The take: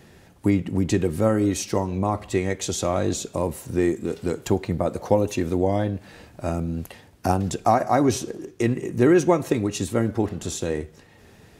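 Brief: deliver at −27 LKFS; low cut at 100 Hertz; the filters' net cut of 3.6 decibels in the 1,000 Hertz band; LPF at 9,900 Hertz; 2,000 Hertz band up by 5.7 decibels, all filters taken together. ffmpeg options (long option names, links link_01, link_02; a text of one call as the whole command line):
ffmpeg -i in.wav -af "highpass=100,lowpass=9900,equalizer=frequency=1000:width_type=o:gain=-7.5,equalizer=frequency=2000:width_type=o:gain=9,volume=-2.5dB" out.wav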